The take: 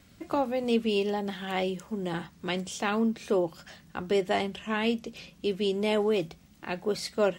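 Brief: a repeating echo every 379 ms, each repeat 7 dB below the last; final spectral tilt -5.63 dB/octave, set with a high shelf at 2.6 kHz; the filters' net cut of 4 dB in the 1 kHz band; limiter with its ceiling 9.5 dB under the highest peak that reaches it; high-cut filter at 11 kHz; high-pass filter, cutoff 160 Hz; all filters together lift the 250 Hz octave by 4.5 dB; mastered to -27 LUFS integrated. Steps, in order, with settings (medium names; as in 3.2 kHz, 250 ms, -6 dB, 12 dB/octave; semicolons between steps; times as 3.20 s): high-pass 160 Hz; low-pass 11 kHz; peaking EQ 250 Hz +7 dB; peaking EQ 1 kHz -5 dB; treble shelf 2.6 kHz -7.5 dB; peak limiter -22 dBFS; feedback delay 379 ms, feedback 45%, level -7 dB; trim +4 dB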